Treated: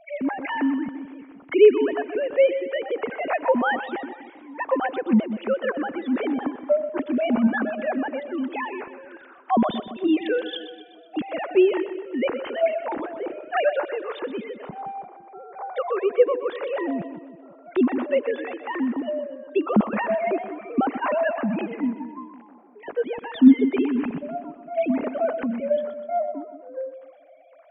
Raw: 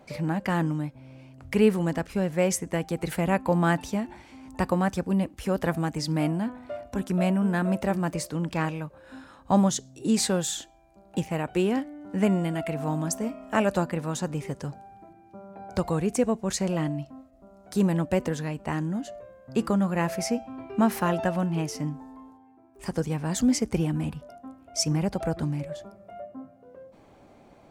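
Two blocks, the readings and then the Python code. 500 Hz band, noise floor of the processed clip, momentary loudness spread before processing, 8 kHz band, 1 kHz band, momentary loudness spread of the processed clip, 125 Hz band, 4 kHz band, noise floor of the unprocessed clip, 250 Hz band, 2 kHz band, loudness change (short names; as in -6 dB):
+7.0 dB, -49 dBFS, 15 LU, under -40 dB, +4.0 dB, 15 LU, -13.5 dB, -2.5 dB, -55 dBFS, +2.5 dB, +4.5 dB, +3.0 dB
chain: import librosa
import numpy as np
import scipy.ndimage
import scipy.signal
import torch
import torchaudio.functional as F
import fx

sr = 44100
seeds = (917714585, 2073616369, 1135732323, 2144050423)

y = fx.sine_speech(x, sr)
y = fx.echo_split(y, sr, split_hz=460.0, low_ms=169, high_ms=125, feedback_pct=52, wet_db=-11.5)
y = F.gain(torch.from_numpy(y), 3.0).numpy()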